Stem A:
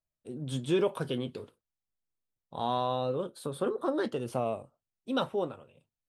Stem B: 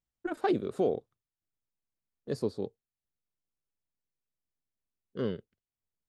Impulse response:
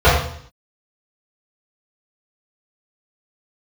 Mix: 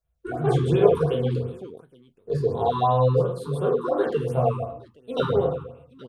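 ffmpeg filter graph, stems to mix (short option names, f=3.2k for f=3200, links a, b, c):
-filter_complex "[0:a]volume=-2dB,asplit=4[a][b][c][d];[b]volume=-20.5dB[e];[c]volume=-18dB[f];[1:a]volume=-5dB,asplit=3[g][h][i];[h]volume=-18.5dB[j];[i]volume=-4.5dB[k];[d]apad=whole_len=268223[l];[g][l]sidechaincompress=threshold=-38dB:ratio=8:attack=16:release=390[m];[2:a]atrim=start_sample=2205[n];[e][j]amix=inputs=2:normalize=0[o];[o][n]afir=irnorm=-1:irlink=0[p];[f][k]amix=inputs=2:normalize=0,aecho=0:1:822:1[q];[a][m][p][q]amix=inputs=4:normalize=0,afftfilt=real='re*(1-between(b*sr/1024,580*pow(6100/580,0.5+0.5*sin(2*PI*2.8*pts/sr))/1.41,580*pow(6100/580,0.5+0.5*sin(2*PI*2.8*pts/sr))*1.41))':imag='im*(1-between(b*sr/1024,580*pow(6100/580,0.5+0.5*sin(2*PI*2.8*pts/sr))/1.41,580*pow(6100/580,0.5+0.5*sin(2*PI*2.8*pts/sr))*1.41))':win_size=1024:overlap=0.75"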